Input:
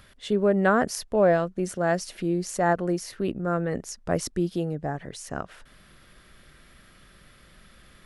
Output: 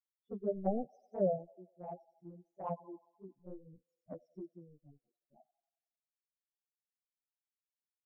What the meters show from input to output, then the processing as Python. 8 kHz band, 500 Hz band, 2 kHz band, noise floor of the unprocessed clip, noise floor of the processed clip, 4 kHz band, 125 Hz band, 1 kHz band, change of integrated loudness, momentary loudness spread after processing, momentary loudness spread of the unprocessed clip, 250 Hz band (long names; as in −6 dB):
below −40 dB, −14.5 dB, below −40 dB, −55 dBFS, below −85 dBFS, below −40 dB, −18.0 dB, −17.0 dB, −13.5 dB, 21 LU, 13 LU, −17.0 dB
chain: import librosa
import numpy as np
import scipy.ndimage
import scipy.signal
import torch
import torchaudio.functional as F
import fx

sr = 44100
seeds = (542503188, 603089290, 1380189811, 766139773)

y = scipy.signal.sosfilt(scipy.signal.butter(2, 6700.0, 'lowpass', fs=sr, output='sos'), x)
y = fx.power_curve(y, sr, exponent=3.0)
y = fx.spec_topn(y, sr, count=4)
y = fx.echo_wet_highpass(y, sr, ms=91, feedback_pct=57, hz=1800.0, wet_db=-5.0)
y = fx.env_flanger(y, sr, rest_ms=9.0, full_db=-34.0)
y = F.gain(torch.from_numpy(y), 5.0).numpy()